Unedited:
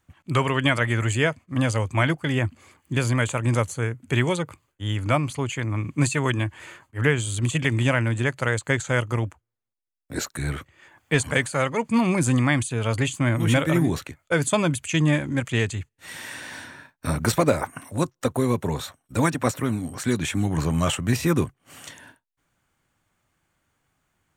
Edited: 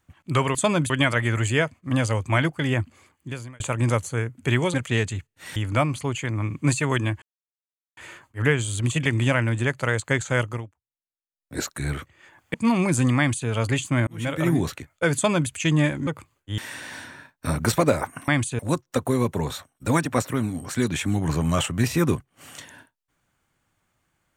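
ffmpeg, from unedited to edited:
ffmpeg -i in.wav -filter_complex "[0:a]asplit=15[link_01][link_02][link_03][link_04][link_05][link_06][link_07][link_08][link_09][link_10][link_11][link_12][link_13][link_14][link_15];[link_01]atrim=end=0.552[link_16];[link_02]atrim=start=14.438:end=14.792[link_17];[link_03]atrim=start=0.548:end=3.25,asetpts=PTS-STARTPTS,afade=type=out:start_time=1.882:duration=0.82[link_18];[link_04]atrim=start=3.25:end=4.392,asetpts=PTS-STARTPTS,afade=type=in:duration=0.004:curve=hsin[link_19];[link_05]atrim=start=15.358:end=16.182[link_20];[link_06]atrim=start=4.898:end=6.56,asetpts=PTS-STARTPTS,afade=type=out:start_time=1.658:duration=0.004:curve=hsin,apad=pad_dur=0.75[link_21];[link_07]atrim=start=6.56:end=9.28,asetpts=PTS-STARTPTS,afade=type=in:duration=0.004:curve=hsin,afade=type=out:start_time=2.46:duration=0.26:silence=0.0794328[link_22];[link_08]atrim=start=9.28:end=9.92,asetpts=PTS-STARTPTS,volume=-22dB[link_23];[link_09]atrim=start=9.92:end=11.132,asetpts=PTS-STARTPTS,afade=type=in:duration=0.26:silence=0.0794328[link_24];[link_10]atrim=start=11.828:end=13.36,asetpts=PTS-STARTPTS,afade=type=out:start_time=1.528:duration=0.004:curve=hsin[link_25];[link_11]atrim=start=13.36:end=15.362,asetpts=PTS-STARTPTS,afade=type=in:duration=0.46[link_26];[link_12]atrim=start=4.388:end=4.902[link_27];[link_13]atrim=start=16.178:end=17.882[link_28];[link_14]atrim=start=12.468:end=12.782[link_29];[link_15]atrim=start=17.878[link_30];[link_16][link_17]acrossfade=duration=0.004:curve1=hsin:curve2=hsin[link_31];[link_18][link_19]concat=n=2:v=0:a=1[link_32];[link_31][link_32]acrossfade=duration=0.004:curve1=hsin:curve2=hsin[link_33];[link_33][link_20]acrossfade=duration=0.004:curve1=hsin:curve2=hsin[link_34];[link_21][link_22][link_23][link_24]concat=n=4:v=0:a=1[link_35];[link_34][link_35]acrossfade=duration=0.004:curve1=hsin:curve2=hsin[link_36];[link_25][link_26]concat=n=2:v=0:a=1[link_37];[link_36][link_37]acrossfade=duration=0.004:curve1=hsin:curve2=hsin[link_38];[link_38][link_27]acrossfade=duration=0.004:curve1=hsin:curve2=hsin[link_39];[link_39][link_28]acrossfade=duration=0.004:curve1=hsin:curve2=hsin[link_40];[link_40][link_29]acrossfade=duration=0.004:curve1=hsin:curve2=hsin[link_41];[link_41][link_30]acrossfade=duration=0.004:curve1=hsin:curve2=hsin" out.wav

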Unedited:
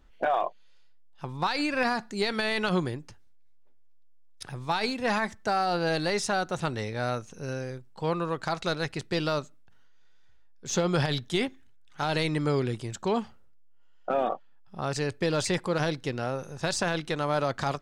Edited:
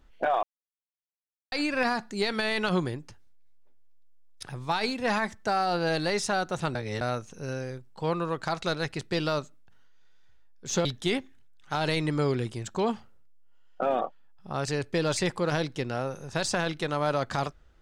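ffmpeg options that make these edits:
ffmpeg -i in.wav -filter_complex "[0:a]asplit=6[link_01][link_02][link_03][link_04][link_05][link_06];[link_01]atrim=end=0.43,asetpts=PTS-STARTPTS,afade=type=out:start_time=0.426:duration=0.004:curve=hsin[link_07];[link_02]atrim=start=0.43:end=1.52,asetpts=PTS-STARTPTS,volume=0[link_08];[link_03]atrim=start=1.52:end=6.752,asetpts=PTS-STARTPTS,afade=type=in:duration=0.004:curve=hsin[link_09];[link_04]atrim=start=6.748:end=7.012,asetpts=PTS-STARTPTS,areverse[link_10];[link_05]atrim=start=7.008:end=10.852[link_11];[link_06]atrim=start=11.128[link_12];[link_07][link_08][link_09]concat=n=3:v=0:a=1[link_13];[link_13][link_10]acrossfade=duration=0.004:curve1=hsin:curve2=hsin[link_14];[link_14][link_11]acrossfade=duration=0.004:curve1=hsin:curve2=hsin[link_15];[link_15][link_12]acrossfade=duration=0.004:curve1=hsin:curve2=hsin" out.wav

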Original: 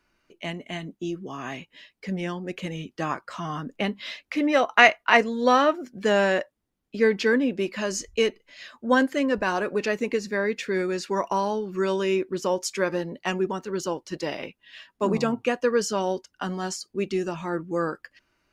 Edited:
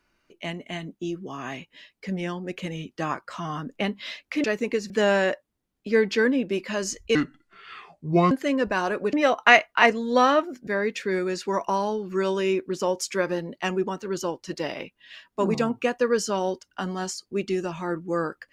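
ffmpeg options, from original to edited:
ffmpeg -i in.wav -filter_complex "[0:a]asplit=7[link_01][link_02][link_03][link_04][link_05][link_06][link_07];[link_01]atrim=end=4.442[link_08];[link_02]atrim=start=9.838:end=10.302[link_09];[link_03]atrim=start=5.978:end=8.234[link_10];[link_04]atrim=start=8.23:end=9.02,asetpts=PTS-STARTPTS,asetrate=29988,aresample=44100[link_11];[link_05]atrim=start=9.016:end=9.842[link_12];[link_06]atrim=start=4.438:end=5.982[link_13];[link_07]atrim=start=10.298[link_14];[link_08][link_09]acrossfade=duration=0.004:curve1=hsin:curve2=hsin[link_15];[link_15][link_10]acrossfade=duration=0.004:curve1=hsin:curve2=hsin[link_16];[link_16][link_11]acrossfade=duration=0.004:curve1=hsin:curve2=hsin[link_17];[link_17][link_12]acrossfade=duration=0.004:curve1=hsin:curve2=hsin[link_18];[link_18][link_13]acrossfade=duration=0.004:curve1=hsin:curve2=hsin[link_19];[link_19][link_14]acrossfade=duration=0.004:curve1=hsin:curve2=hsin" out.wav

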